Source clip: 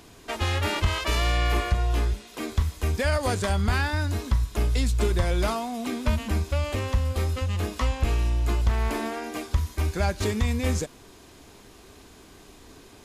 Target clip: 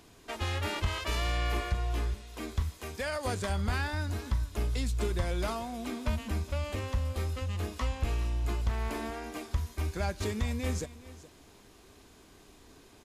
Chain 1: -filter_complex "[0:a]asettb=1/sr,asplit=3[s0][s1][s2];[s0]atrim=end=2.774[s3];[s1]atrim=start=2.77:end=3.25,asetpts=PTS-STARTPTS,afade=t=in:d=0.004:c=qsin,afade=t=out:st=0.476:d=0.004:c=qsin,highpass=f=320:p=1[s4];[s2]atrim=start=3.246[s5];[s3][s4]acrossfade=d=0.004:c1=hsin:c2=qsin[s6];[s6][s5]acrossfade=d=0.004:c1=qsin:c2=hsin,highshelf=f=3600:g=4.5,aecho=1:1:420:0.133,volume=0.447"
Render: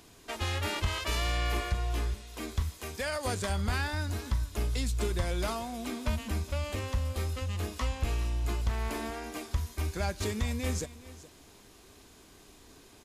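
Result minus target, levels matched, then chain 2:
8 kHz band +3.5 dB
-filter_complex "[0:a]asettb=1/sr,asplit=3[s0][s1][s2];[s0]atrim=end=2.774[s3];[s1]atrim=start=2.77:end=3.25,asetpts=PTS-STARTPTS,afade=t=in:d=0.004:c=qsin,afade=t=out:st=0.476:d=0.004:c=qsin,highpass=f=320:p=1[s4];[s2]atrim=start=3.246[s5];[s3][s4]acrossfade=d=0.004:c1=hsin:c2=qsin[s6];[s6][s5]acrossfade=d=0.004:c1=qsin:c2=hsin,aecho=1:1:420:0.133,volume=0.447"

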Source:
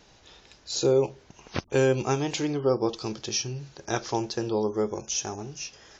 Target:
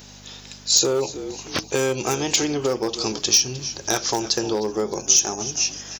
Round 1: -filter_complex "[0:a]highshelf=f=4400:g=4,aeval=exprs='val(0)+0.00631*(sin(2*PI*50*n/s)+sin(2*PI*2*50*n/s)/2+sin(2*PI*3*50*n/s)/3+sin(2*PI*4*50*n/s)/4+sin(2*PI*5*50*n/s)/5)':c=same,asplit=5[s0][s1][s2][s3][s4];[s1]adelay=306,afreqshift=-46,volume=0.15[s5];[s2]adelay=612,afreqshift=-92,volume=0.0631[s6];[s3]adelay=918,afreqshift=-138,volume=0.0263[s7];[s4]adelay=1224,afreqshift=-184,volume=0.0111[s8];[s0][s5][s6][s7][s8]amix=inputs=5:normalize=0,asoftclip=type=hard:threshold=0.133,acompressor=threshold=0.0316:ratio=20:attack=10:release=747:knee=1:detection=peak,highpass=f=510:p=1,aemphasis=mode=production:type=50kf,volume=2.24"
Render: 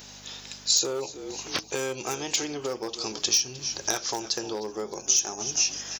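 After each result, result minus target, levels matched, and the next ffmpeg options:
compression: peak gain reduction +6 dB; 250 Hz band -4.0 dB
-filter_complex "[0:a]highshelf=f=4400:g=4,aeval=exprs='val(0)+0.00631*(sin(2*PI*50*n/s)+sin(2*PI*2*50*n/s)/2+sin(2*PI*3*50*n/s)/3+sin(2*PI*4*50*n/s)/4+sin(2*PI*5*50*n/s)/5)':c=same,asplit=5[s0][s1][s2][s3][s4];[s1]adelay=306,afreqshift=-46,volume=0.15[s5];[s2]adelay=612,afreqshift=-92,volume=0.0631[s6];[s3]adelay=918,afreqshift=-138,volume=0.0263[s7];[s4]adelay=1224,afreqshift=-184,volume=0.0111[s8];[s0][s5][s6][s7][s8]amix=inputs=5:normalize=0,asoftclip=type=hard:threshold=0.133,acompressor=threshold=0.0668:ratio=20:attack=10:release=747:knee=1:detection=peak,highpass=f=510:p=1,aemphasis=mode=production:type=50kf,volume=2.24"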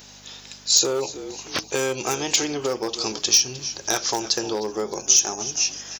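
250 Hz band -3.5 dB
-filter_complex "[0:a]highshelf=f=4400:g=4,aeval=exprs='val(0)+0.00631*(sin(2*PI*50*n/s)+sin(2*PI*2*50*n/s)/2+sin(2*PI*3*50*n/s)/3+sin(2*PI*4*50*n/s)/4+sin(2*PI*5*50*n/s)/5)':c=same,asplit=5[s0][s1][s2][s3][s4];[s1]adelay=306,afreqshift=-46,volume=0.15[s5];[s2]adelay=612,afreqshift=-92,volume=0.0631[s6];[s3]adelay=918,afreqshift=-138,volume=0.0263[s7];[s4]adelay=1224,afreqshift=-184,volume=0.0111[s8];[s0][s5][s6][s7][s8]amix=inputs=5:normalize=0,asoftclip=type=hard:threshold=0.133,acompressor=threshold=0.0668:ratio=20:attack=10:release=747:knee=1:detection=peak,highpass=f=220:p=1,aemphasis=mode=production:type=50kf,volume=2.24"

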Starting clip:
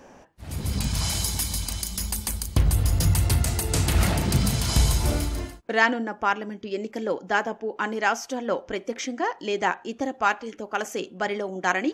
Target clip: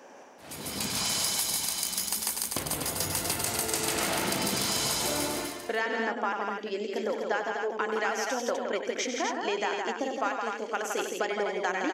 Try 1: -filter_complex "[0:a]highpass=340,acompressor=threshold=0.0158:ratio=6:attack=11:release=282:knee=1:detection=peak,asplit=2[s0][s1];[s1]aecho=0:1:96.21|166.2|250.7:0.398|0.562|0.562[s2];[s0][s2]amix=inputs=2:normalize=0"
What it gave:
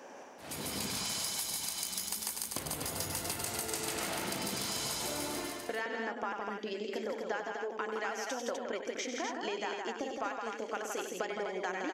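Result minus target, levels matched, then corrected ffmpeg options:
compression: peak gain reduction +7.5 dB
-filter_complex "[0:a]highpass=340,acompressor=threshold=0.0447:ratio=6:attack=11:release=282:knee=1:detection=peak,asplit=2[s0][s1];[s1]aecho=0:1:96.21|166.2|250.7:0.398|0.562|0.562[s2];[s0][s2]amix=inputs=2:normalize=0"

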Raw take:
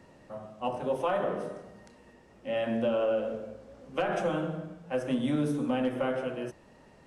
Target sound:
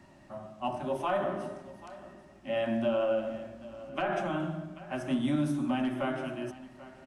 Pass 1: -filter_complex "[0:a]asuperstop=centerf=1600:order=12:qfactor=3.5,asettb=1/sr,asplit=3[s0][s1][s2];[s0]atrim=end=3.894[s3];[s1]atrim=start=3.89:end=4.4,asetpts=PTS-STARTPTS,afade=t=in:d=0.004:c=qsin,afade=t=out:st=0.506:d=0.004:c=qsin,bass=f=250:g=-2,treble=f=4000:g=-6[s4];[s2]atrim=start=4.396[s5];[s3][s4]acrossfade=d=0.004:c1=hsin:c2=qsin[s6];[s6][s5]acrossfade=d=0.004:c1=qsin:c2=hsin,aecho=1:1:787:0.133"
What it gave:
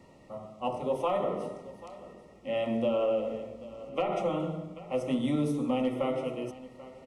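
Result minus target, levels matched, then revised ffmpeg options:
2 kHz band -6.5 dB
-filter_complex "[0:a]asuperstop=centerf=470:order=12:qfactor=3.5,asettb=1/sr,asplit=3[s0][s1][s2];[s0]atrim=end=3.894[s3];[s1]atrim=start=3.89:end=4.4,asetpts=PTS-STARTPTS,afade=t=in:d=0.004:c=qsin,afade=t=out:st=0.506:d=0.004:c=qsin,bass=f=250:g=-2,treble=f=4000:g=-6[s4];[s2]atrim=start=4.396[s5];[s3][s4]acrossfade=d=0.004:c1=hsin:c2=qsin[s6];[s6][s5]acrossfade=d=0.004:c1=qsin:c2=hsin,aecho=1:1:787:0.133"

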